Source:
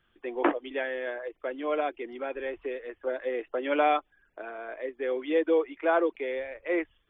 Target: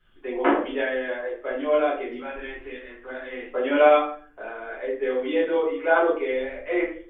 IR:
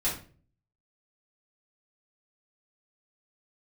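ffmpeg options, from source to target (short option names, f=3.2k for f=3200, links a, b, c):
-filter_complex "[0:a]asettb=1/sr,asplit=3[a][b][c];[a]atrim=end=2.174[d];[b]atrim=start=2.17:end=3.42,asetpts=PTS-STARTPTS,afade=t=in:d=0.004:c=qsin,afade=t=out:st=1.246:d=0.004:c=qsin,equalizer=f=460:t=o:w=1.2:g=-12.5[e];[c]atrim=start=3.416[f];[d][e]acrossfade=d=0.004:c1=hsin:c2=qsin[g];[g][f]acrossfade=d=0.004:c1=qsin:c2=hsin[h];[1:a]atrim=start_sample=2205,asetrate=36162,aresample=44100[i];[h][i]afir=irnorm=-1:irlink=0,volume=-3.5dB"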